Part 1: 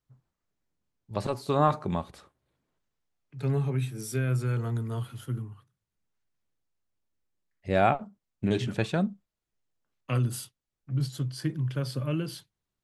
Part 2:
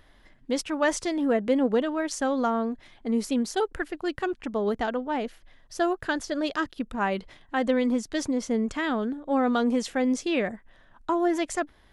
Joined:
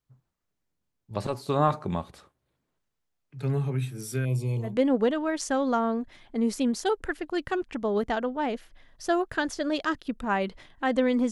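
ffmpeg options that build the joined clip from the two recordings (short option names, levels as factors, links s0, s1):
-filter_complex "[0:a]asettb=1/sr,asplit=3[s0][s1][s2];[s0]atrim=end=4.254[s3];[s1]atrim=start=4.25:end=4.76,asetpts=PTS-STARTPTS,afade=t=in:d=0.004:c=qsin,afade=t=out:st=0.506:d=0.004:c=qsin,asuperstop=centerf=1500:order=8:qfactor=1.4[s4];[s2]atrim=start=4.756[s5];[s3][s4]acrossfade=d=0.004:c1=hsin:c2=qsin[s6];[s6][s5]acrossfade=d=0.004:c1=qsin:c2=hsin,apad=whole_dur=11.31,atrim=end=11.31,atrim=end=4.76,asetpts=PTS-STARTPTS[s7];[1:a]atrim=start=1.33:end=8.02,asetpts=PTS-STARTPTS[s8];[s7][s8]acrossfade=d=0.14:c1=tri:c2=tri"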